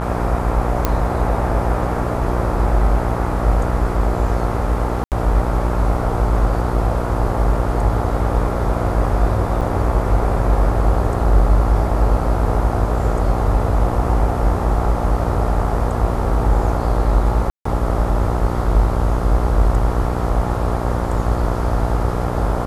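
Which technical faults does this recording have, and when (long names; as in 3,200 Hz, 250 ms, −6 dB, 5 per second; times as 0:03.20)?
mains buzz 60 Hz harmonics 23 −22 dBFS
0:00.85: click −3 dBFS
0:05.04–0:05.12: drop-out 78 ms
0:09.61–0:09.62: drop-out 6.2 ms
0:17.50–0:17.65: drop-out 154 ms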